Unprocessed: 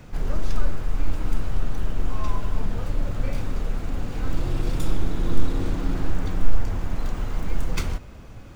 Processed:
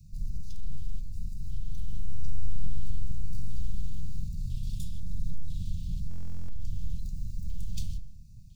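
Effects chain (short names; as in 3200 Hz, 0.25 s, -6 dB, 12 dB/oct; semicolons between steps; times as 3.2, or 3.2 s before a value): octaver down 1 oct, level -3 dB; inverse Chebyshev band-stop 340–1900 Hz, stop band 40 dB; band shelf 670 Hz -13 dB 2.5 oct; limiter -14 dBFS, peak gain reduction 10 dB; LFO notch square 1 Hz 690–3200 Hz; 1.73–4.29 multi-head echo 68 ms, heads all three, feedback 60%, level -12 dB; reverb RT60 0.60 s, pre-delay 0.105 s, DRR 19.5 dB; stuck buffer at 6.09, samples 1024, times 16; gain -8 dB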